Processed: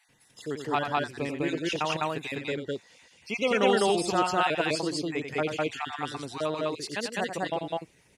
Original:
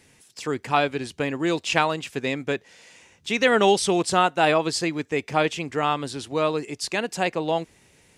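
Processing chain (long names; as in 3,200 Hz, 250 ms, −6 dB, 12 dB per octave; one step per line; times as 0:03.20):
time-frequency cells dropped at random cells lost 32%
parametric band 7,500 Hz −3 dB 0.65 octaves
on a send: loudspeakers that aren't time-aligned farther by 31 metres −8 dB, 70 metres 0 dB
on the sum: level −6.5 dB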